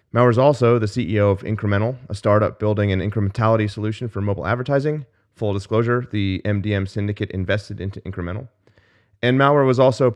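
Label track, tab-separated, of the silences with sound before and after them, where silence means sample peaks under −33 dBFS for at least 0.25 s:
5.030000	5.410000	silence
8.450000	9.230000	silence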